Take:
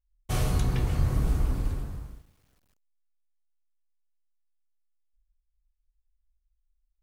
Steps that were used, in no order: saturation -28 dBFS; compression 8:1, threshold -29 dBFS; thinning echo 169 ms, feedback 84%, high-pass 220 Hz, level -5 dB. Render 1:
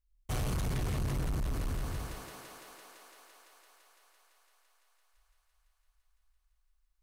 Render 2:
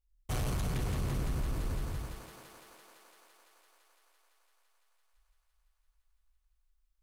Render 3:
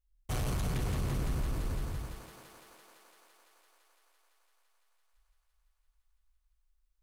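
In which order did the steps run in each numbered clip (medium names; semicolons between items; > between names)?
thinning echo > saturation > compression; saturation > thinning echo > compression; saturation > compression > thinning echo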